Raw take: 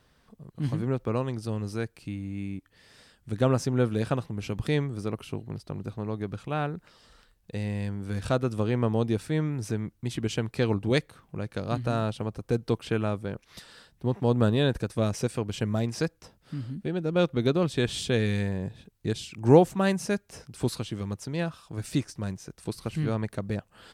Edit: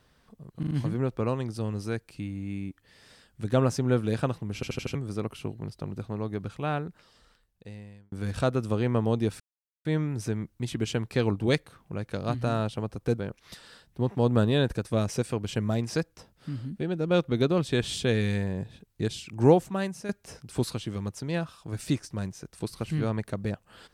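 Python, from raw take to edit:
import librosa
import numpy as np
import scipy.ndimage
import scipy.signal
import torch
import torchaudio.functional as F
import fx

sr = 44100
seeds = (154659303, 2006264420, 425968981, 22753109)

y = fx.edit(x, sr, fx.stutter(start_s=0.59, slice_s=0.04, count=4),
    fx.stutter_over(start_s=4.43, slice_s=0.08, count=5),
    fx.fade_out_span(start_s=6.58, length_s=1.42),
    fx.insert_silence(at_s=9.28, length_s=0.45),
    fx.cut(start_s=12.61, length_s=0.62),
    fx.fade_out_to(start_s=19.32, length_s=0.82, floor_db=-10.5), tone=tone)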